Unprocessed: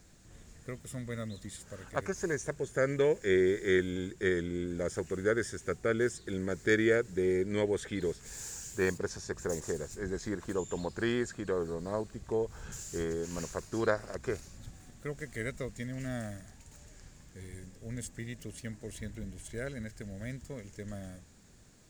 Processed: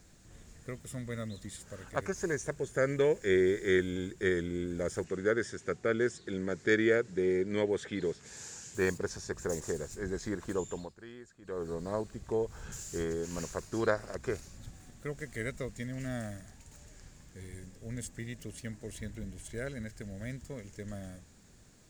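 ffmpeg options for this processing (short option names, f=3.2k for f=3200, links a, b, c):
-filter_complex "[0:a]asettb=1/sr,asplit=3[a][b][c];[a]atrim=end=5.044[d];[b]atrim=start=5.04:end=8.75,asetpts=PTS-STARTPTS,afade=t=in:d=0.004:c=qsin,afade=t=out:st=3.706:d=0.004:c=qsin,highpass=110,lowpass=6.6k[e];[c]atrim=start=8.746[f];[d][e]acrossfade=d=0.004:c1=hsin:c2=qsin[g];[g][f]acrossfade=d=0.004:c1=qsin:c2=hsin,asplit=3[h][i][j];[h]atrim=end=10.96,asetpts=PTS-STARTPTS,afade=t=out:st=10.64:d=0.32:silence=0.125893[k];[i]atrim=start=10.96:end=11.41,asetpts=PTS-STARTPTS,volume=-18dB[l];[j]atrim=start=11.41,asetpts=PTS-STARTPTS,afade=t=in:d=0.32:silence=0.125893[m];[k][l][m]concat=n=3:v=0:a=1"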